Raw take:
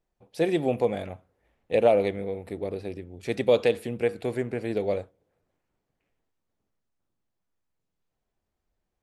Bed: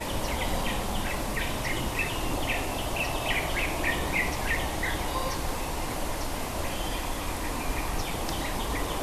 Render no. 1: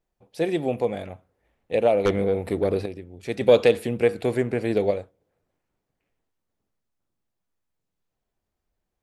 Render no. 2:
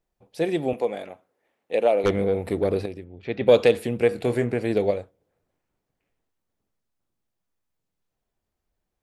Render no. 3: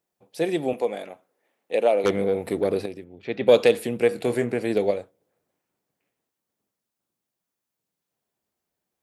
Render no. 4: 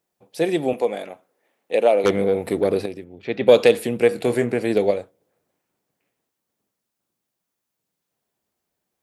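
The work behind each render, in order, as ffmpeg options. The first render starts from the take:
-filter_complex "[0:a]asettb=1/sr,asplit=3[a][b][c];[a]atrim=end=2.054[d];[b]atrim=start=2.05:end=2.86,asetpts=PTS-STARTPTS,afade=t=in:d=0.004:c=qsin,afade=t=out:st=0.806:d=0.004:c=qsin,aeval=exprs='0.211*sin(PI/2*2*val(0)/0.211)':c=same[e];[c]atrim=start=2.856[f];[d][e]acrossfade=d=0.004:c1=hsin:c2=qsin[g];[g][f]acrossfade=d=0.004:c1=qsin:c2=hsin,asettb=1/sr,asplit=3[h][i][j];[h]atrim=end=3.414[k];[i]atrim=start=3.41:end=4.91,asetpts=PTS-STARTPTS,afade=t=in:d=0.004:c=qsin,afade=t=out:st=1.496:d=0.004:c=qsin,acontrast=38[l];[j]atrim=start=4.906[m];[k][l]acrossfade=d=0.004:c1=hsin:c2=qsin[n];[n][m]acrossfade=d=0.004:c1=qsin:c2=hsin"
-filter_complex "[0:a]asettb=1/sr,asplit=3[a][b][c];[a]atrim=end=0.734[d];[b]atrim=start=0.73:end=2.04,asetpts=PTS-STARTPTS,afade=t=in:d=0.004:c=qsin,afade=t=out:st=1.306:d=0.004:c=qsin,highpass=280[e];[c]atrim=start=2.036[f];[d][e]acrossfade=d=0.004:c1=hsin:c2=qsin[g];[g][f]acrossfade=d=0.004:c1=qsin:c2=hsin,asplit=3[h][i][j];[h]afade=t=out:st=3.04:d=0.02[k];[i]lowpass=f=3.7k:w=0.5412,lowpass=f=3.7k:w=1.3066,afade=t=in:st=3.04:d=0.02,afade=t=out:st=3.47:d=0.02[l];[j]afade=t=in:st=3.47:d=0.02[m];[k][l][m]amix=inputs=3:normalize=0,asettb=1/sr,asplit=3[n][o][p];[n]atrim=end=4.094[q];[o]atrim=start=4.09:end=4.54,asetpts=PTS-STARTPTS,afade=t=in:d=0.004:c=qsin,afade=t=out:st=0.446:d=0.004:c=qsin,asplit=2[r][s];[s]adelay=25,volume=-9dB[t];[r][t]amix=inputs=2:normalize=0,atrim=end_sample=19845[u];[p]atrim=start=4.536[v];[q][u]acrossfade=d=0.004:c1=hsin:c2=qsin[w];[w][v]acrossfade=d=0.004:c1=qsin:c2=hsin"
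-af "highpass=150,highshelf=f=6.3k:g=6.5"
-af "volume=3.5dB,alimiter=limit=-2dB:level=0:latency=1"

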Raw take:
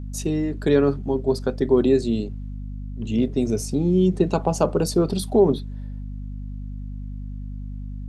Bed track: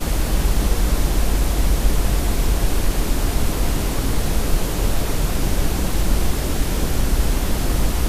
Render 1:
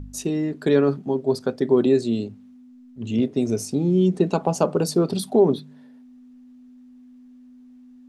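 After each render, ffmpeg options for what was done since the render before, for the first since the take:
-af "bandreject=f=50:t=h:w=4,bandreject=f=100:t=h:w=4,bandreject=f=150:t=h:w=4,bandreject=f=200:t=h:w=4"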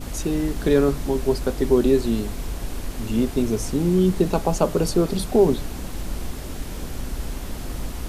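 -filter_complex "[1:a]volume=-11dB[a];[0:a][a]amix=inputs=2:normalize=0"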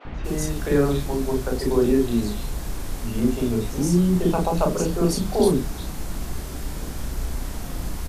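-filter_complex "[0:a]asplit=2[a][b];[b]adelay=34,volume=-5dB[c];[a][c]amix=inputs=2:normalize=0,acrossover=split=450|2900[d][e][f];[d]adelay=50[g];[f]adelay=240[h];[g][e][h]amix=inputs=3:normalize=0"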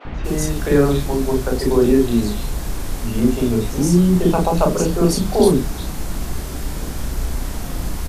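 -af "volume=5dB,alimiter=limit=-2dB:level=0:latency=1"

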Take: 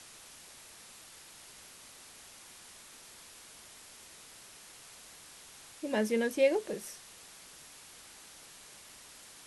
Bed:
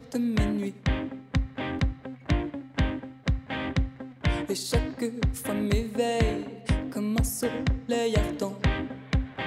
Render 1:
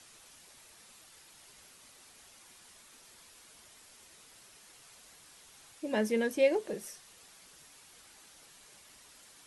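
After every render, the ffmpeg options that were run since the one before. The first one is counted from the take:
-af "afftdn=nr=6:nf=-54"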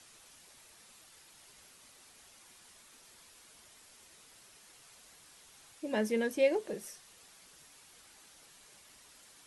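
-af "volume=-1.5dB"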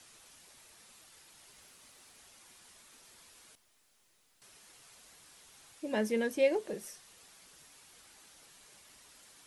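-filter_complex "[0:a]asettb=1/sr,asplit=3[a][b][c];[a]atrim=end=1.524[d];[b]atrim=start=1.52:end=2.18,asetpts=PTS-STARTPTS,afade=t=in:d=0.004:c=qsin,afade=t=out:st=0.656:d=0.004:c=qsin,acrusher=bits=5:mode=log:mix=0:aa=0.000001[e];[c]atrim=start=2.176[f];[d][e]acrossfade=d=0.004:c1=hsin:c2=qsin[g];[g][f]acrossfade=d=0.004:c1=qsin:c2=hsin,asettb=1/sr,asplit=3[h][i][j];[h]atrim=end=3.554[k];[i]atrim=start=3.55:end=4.42,asetpts=PTS-STARTPTS,afade=t=in:d=0.004:c=qsin,afade=t=out:st=0.866:d=0.004:c=qsin,aeval=exprs='(tanh(3160*val(0)+0.8)-tanh(0.8))/3160':c=same[l];[j]atrim=start=4.416[m];[k][l]acrossfade=d=0.004:c1=hsin:c2=qsin[n];[n][m]acrossfade=d=0.004:c1=qsin:c2=hsin"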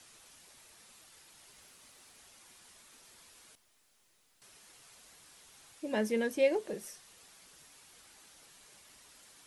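-af anull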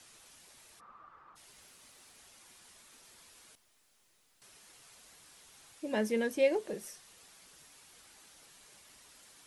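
-filter_complex "[0:a]asplit=3[a][b][c];[a]afade=t=out:st=0.79:d=0.02[d];[b]lowpass=f=1.2k:t=q:w=10,afade=t=in:st=0.79:d=0.02,afade=t=out:st=1.35:d=0.02[e];[c]afade=t=in:st=1.35:d=0.02[f];[d][e][f]amix=inputs=3:normalize=0"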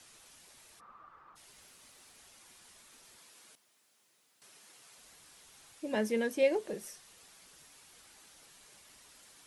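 -filter_complex "[0:a]asettb=1/sr,asplit=3[a][b][c];[a]atrim=end=3.184[d];[b]atrim=start=3.18:end=4.98,asetpts=PTS-STARTPTS,afade=t=in:d=0.004:c=qsin,afade=t=out:st=1.796:d=0.004:c=qsin,highpass=150[e];[c]atrim=start=4.976[f];[d][e]acrossfade=d=0.004:c1=hsin:c2=qsin[g];[g][f]acrossfade=d=0.004:c1=qsin:c2=hsin,asettb=1/sr,asplit=3[h][i][j];[h]atrim=end=5.954[k];[i]atrim=start=5.95:end=6.43,asetpts=PTS-STARTPTS,afade=t=in:d=0.004:c=qsin,afade=t=out:st=0.476:d=0.004:c=qsin,highpass=120[l];[j]atrim=start=6.426[m];[k][l]acrossfade=d=0.004:c1=hsin:c2=qsin[n];[n][m]acrossfade=d=0.004:c1=qsin:c2=hsin"

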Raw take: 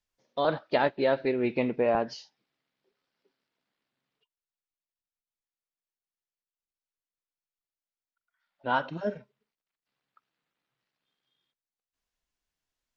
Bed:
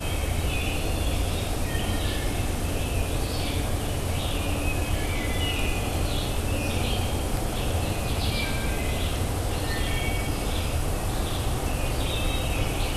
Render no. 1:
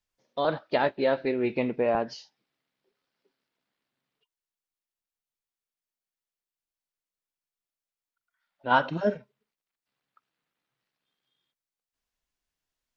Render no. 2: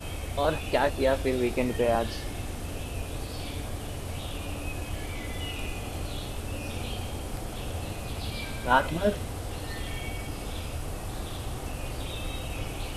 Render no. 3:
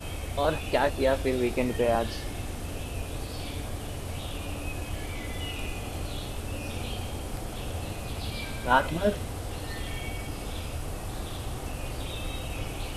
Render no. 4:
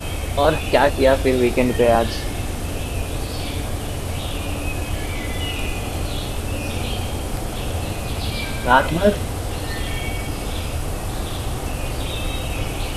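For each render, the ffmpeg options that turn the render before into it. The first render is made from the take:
-filter_complex "[0:a]asettb=1/sr,asplit=3[a][b][c];[a]atrim=end=0.804[d];[b]atrim=start=0.8:end=1.55,asetpts=PTS-STARTPTS,afade=t=in:d=0.004:c=qsin,afade=t=out:st=0.746:d=0.004:c=qsin,asplit=2[e][f];[f]adelay=19,volume=-12.5dB[g];[e][g]amix=inputs=2:normalize=0,atrim=end_sample=33075[h];[c]atrim=start=1.546[i];[d][h]acrossfade=d=0.004:c1=hsin:c2=qsin[j];[j][i]acrossfade=d=0.004:c1=qsin:c2=hsin,asplit=3[k][l][m];[k]afade=t=out:st=8.7:d=0.02[n];[l]acontrast=38,afade=t=in:st=8.7:d=0.02,afade=t=out:st=9.15:d=0.02[o];[m]afade=t=in:st=9.15:d=0.02[p];[n][o][p]amix=inputs=3:normalize=0"
-filter_complex "[1:a]volume=-8dB[a];[0:a][a]amix=inputs=2:normalize=0"
-af anull
-af "volume=9.5dB,alimiter=limit=-1dB:level=0:latency=1"

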